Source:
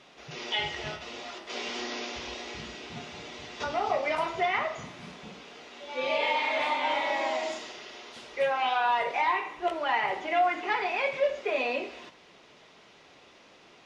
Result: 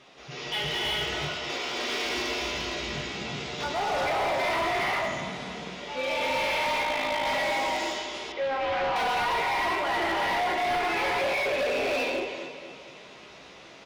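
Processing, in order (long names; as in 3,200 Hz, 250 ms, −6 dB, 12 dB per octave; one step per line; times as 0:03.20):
0:01.15–0:01.73: high-pass filter 330 Hz
reverb whose tail is shaped and stops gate 420 ms rising, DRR −5 dB
0:06.83–0:07.26: amplitude modulation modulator 54 Hz, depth 80%
double-tracking delay 15 ms −6 dB
repeating echo 235 ms, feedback 55%, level −14 dB
hard clipping −24.5 dBFS, distortion −7 dB
0:08.32–0:08.96: high-frequency loss of the air 180 metres
slew-rate limiting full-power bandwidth 140 Hz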